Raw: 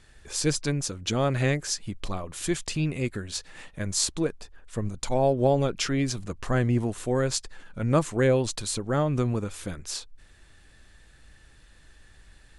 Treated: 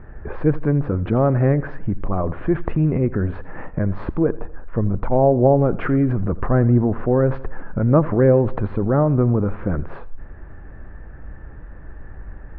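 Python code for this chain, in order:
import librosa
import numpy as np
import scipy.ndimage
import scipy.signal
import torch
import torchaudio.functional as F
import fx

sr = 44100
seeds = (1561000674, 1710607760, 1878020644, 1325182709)

p1 = scipy.signal.sosfilt(scipy.signal.bessel(6, 990.0, 'lowpass', norm='mag', fs=sr, output='sos'), x)
p2 = fx.over_compress(p1, sr, threshold_db=-37.0, ratio=-1.0)
p3 = p1 + (p2 * librosa.db_to_amplitude(0.0))
p4 = fx.echo_feedback(p3, sr, ms=83, feedback_pct=49, wet_db=-19)
y = p4 * librosa.db_to_amplitude(7.5)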